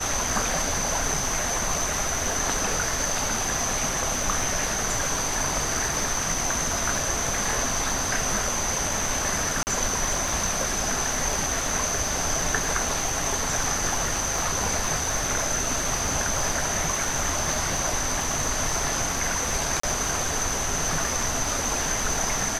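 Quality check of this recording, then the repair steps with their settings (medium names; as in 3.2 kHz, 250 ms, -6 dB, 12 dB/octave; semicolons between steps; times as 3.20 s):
crackle 26 per s -29 dBFS
9.63–9.67 s: dropout 39 ms
19.80–19.83 s: dropout 34 ms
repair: de-click; interpolate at 9.63 s, 39 ms; interpolate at 19.80 s, 34 ms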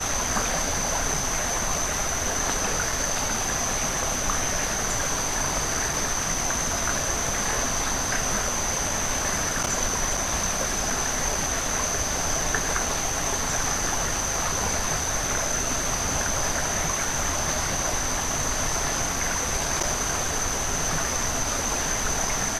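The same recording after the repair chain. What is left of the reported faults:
nothing left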